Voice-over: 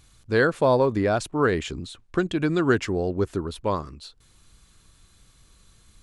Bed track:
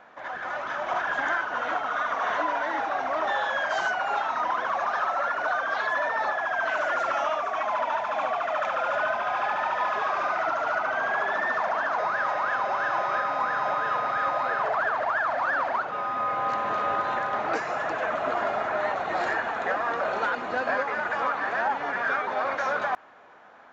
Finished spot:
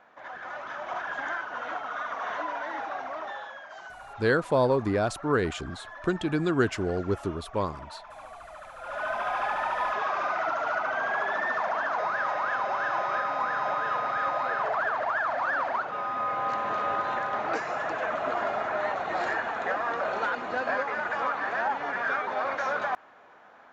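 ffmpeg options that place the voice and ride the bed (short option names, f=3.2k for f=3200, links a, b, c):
-filter_complex "[0:a]adelay=3900,volume=-3.5dB[a];[1:a]volume=9.5dB,afade=t=out:st=2.91:d=0.71:silence=0.266073,afade=t=in:st=8.78:d=0.43:silence=0.16788[b];[a][b]amix=inputs=2:normalize=0"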